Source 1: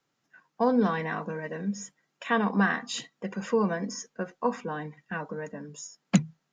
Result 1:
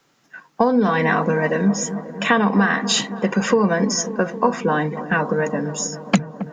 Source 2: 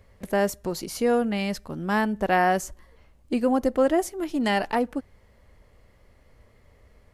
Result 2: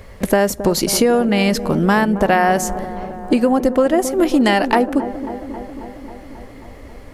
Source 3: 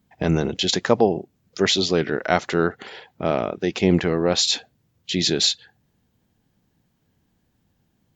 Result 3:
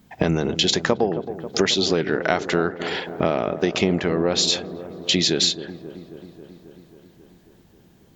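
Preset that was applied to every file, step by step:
peaking EQ 89 Hz -4 dB 1.3 oct; compression 6:1, threshold -30 dBFS; feedback echo behind a low-pass 270 ms, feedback 71%, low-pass 1 kHz, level -11.5 dB; peak normalisation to -2 dBFS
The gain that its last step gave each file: +16.5 dB, +18.0 dB, +12.5 dB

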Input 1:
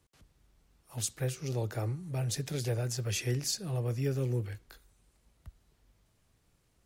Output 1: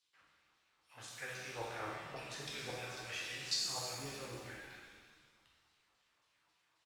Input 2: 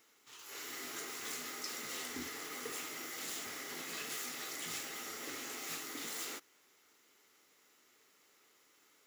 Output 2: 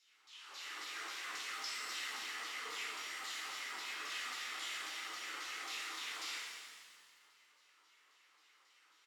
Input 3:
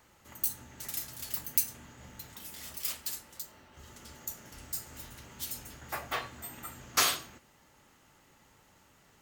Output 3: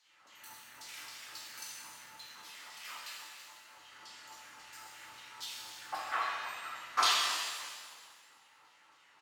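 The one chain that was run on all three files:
LFO band-pass saw down 3.7 Hz 850–4700 Hz; frequency-shifting echo 310 ms, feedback 34%, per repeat -74 Hz, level -16 dB; pitch-shifted reverb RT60 1.4 s, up +7 st, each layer -8 dB, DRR -4.5 dB; trim +1.5 dB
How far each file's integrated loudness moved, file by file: -8.0 LU, -0.5 LU, -1.5 LU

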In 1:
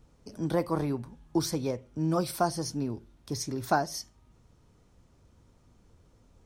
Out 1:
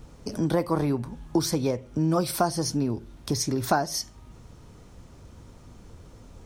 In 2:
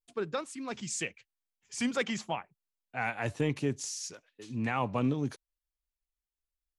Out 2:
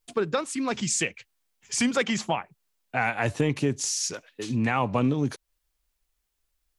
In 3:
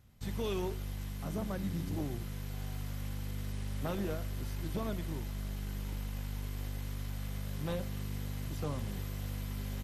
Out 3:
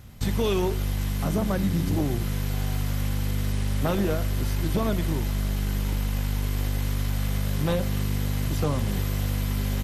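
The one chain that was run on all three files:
compression 2:1, threshold -41 dBFS; normalise loudness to -27 LUFS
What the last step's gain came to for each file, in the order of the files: +13.0 dB, +14.0 dB, +16.5 dB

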